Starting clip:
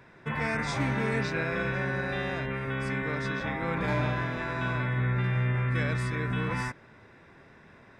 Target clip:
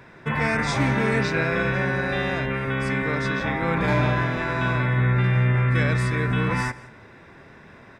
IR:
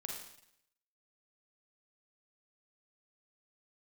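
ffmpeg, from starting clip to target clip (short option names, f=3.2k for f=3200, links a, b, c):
-filter_complex "[0:a]aecho=1:1:177:0.0841,asplit=2[a][b];[1:a]atrim=start_sample=2205[c];[b][c]afir=irnorm=-1:irlink=0,volume=-15dB[d];[a][d]amix=inputs=2:normalize=0,volume=6dB"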